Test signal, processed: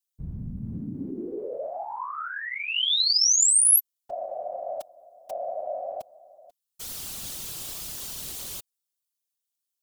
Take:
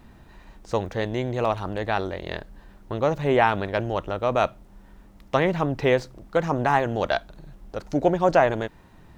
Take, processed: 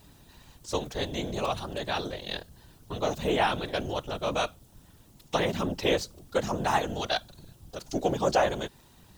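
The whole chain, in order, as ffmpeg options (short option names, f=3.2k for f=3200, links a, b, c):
-af "aexciter=amount=4.9:drive=3:freq=2.9k,afftfilt=real='hypot(re,im)*cos(2*PI*random(0))':imag='hypot(re,im)*sin(2*PI*random(1))':win_size=512:overlap=0.75"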